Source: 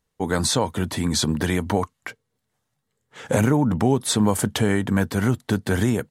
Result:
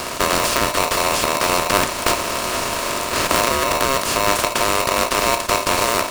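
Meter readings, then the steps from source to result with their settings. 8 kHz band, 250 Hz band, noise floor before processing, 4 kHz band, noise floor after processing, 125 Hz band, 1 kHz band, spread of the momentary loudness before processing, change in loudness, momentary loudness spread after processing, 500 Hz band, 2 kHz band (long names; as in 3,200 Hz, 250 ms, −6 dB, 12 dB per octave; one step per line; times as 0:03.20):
+8.0 dB, −6.0 dB, −77 dBFS, +8.5 dB, −27 dBFS, −9.0 dB, +12.0 dB, 6 LU, +4.0 dB, 4 LU, +5.0 dB, +9.5 dB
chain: compressor on every frequency bin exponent 0.2
flanger 0.4 Hz, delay 6.8 ms, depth 5.1 ms, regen +79%
speech leveller within 5 dB 0.5 s
ring modulator with a square carrier 810 Hz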